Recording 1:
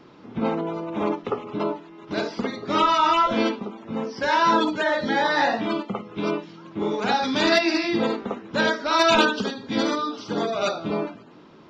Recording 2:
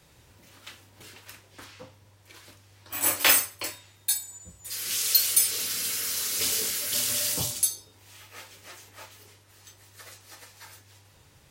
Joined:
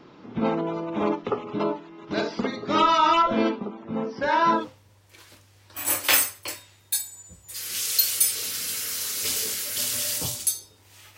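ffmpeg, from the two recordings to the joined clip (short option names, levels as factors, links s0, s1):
-filter_complex "[0:a]asettb=1/sr,asplit=3[s0][s1][s2];[s0]atrim=end=3.224[s3];[s1]atrim=start=3.22:end=4.68,asetpts=PTS-STARTPTS,afade=t=in:d=0.004:c=qsin,afade=t=out:st=1.456:d=0.004:c=qsin,highshelf=f=3000:g=-10.5[s4];[s2]atrim=start=4.676[s5];[s3][s4]acrossfade=d=0.004:c1=hsin:c2=qsin[s6];[s6][s5]acrossfade=d=0.004:c1=qsin:c2=hsin,apad=whole_dur=11.17,atrim=end=11.17,atrim=end=4.68,asetpts=PTS-STARTPTS[s7];[1:a]atrim=start=1.66:end=8.33,asetpts=PTS-STARTPTS[s8];[s7][s8]acrossfade=d=0.18:c1=tri:c2=tri"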